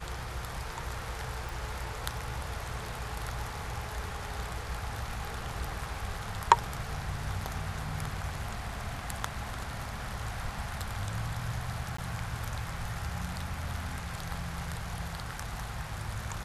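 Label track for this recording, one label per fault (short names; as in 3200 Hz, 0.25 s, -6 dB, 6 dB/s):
1.490000	1.490000	pop
11.970000	11.980000	gap 14 ms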